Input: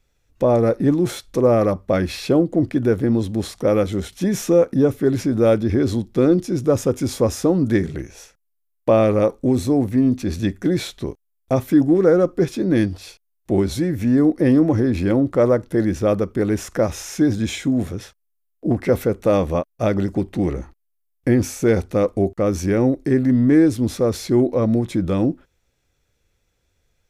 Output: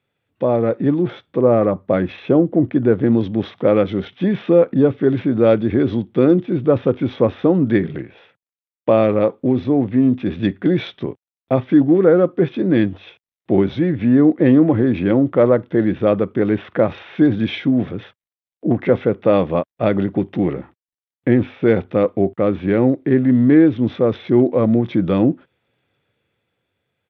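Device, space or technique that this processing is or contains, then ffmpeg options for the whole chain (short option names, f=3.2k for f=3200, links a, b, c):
Bluetooth headset: -filter_complex "[0:a]asettb=1/sr,asplit=3[a][b][c];[a]atrim=end=1.024[d];[b]atrim=start=1.02:end=3.01,asetpts=PTS-STARTPTS,afade=t=in:d=0.004:c=qsin,afade=t=out:st=1.986:d=0.004:c=qsin,equalizer=f=3.3k:t=o:w=1.7:g=-6[e];[c]atrim=start=3.006[f];[d][e]acrossfade=d=0.004:c1=hsin:c2=qsin[g];[g][f]acrossfade=d=0.004:c1=qsin:c2=hsin,highpass=f=110:w=0.5412,highpass=f=110:w=1.3066,dynaudnorm=f=120:g=17:m=11.5dB,aresample=8000,aresample=44100,volume=-1dB" -ar 32000 -c:a sbc -b:a 64k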